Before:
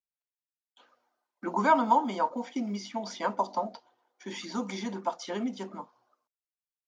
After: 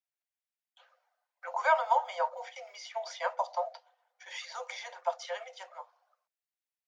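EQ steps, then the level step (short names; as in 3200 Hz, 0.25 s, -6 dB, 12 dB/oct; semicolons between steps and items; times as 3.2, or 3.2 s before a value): rippled Chebyshev high-pass 500 Hz, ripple 6 dB; +2.0 dB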